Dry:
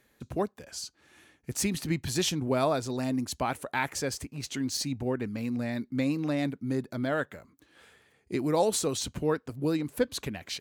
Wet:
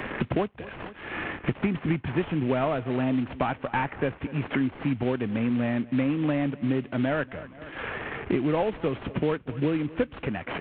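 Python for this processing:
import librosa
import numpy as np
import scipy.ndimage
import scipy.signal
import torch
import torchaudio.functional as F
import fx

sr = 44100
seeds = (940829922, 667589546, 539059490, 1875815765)

p1 = fx.cvsd(x, sr, bps=16000)
p2 = p1 + fx.echo_feedback(p1, sr, ms=235, feedback_pct=37, wet_db=-23.0, dry=0)
p3 = fx.band_squash(p2, sr, depth_pct=100)
y = p3 * 10.0 ** (3.5 / 20.0)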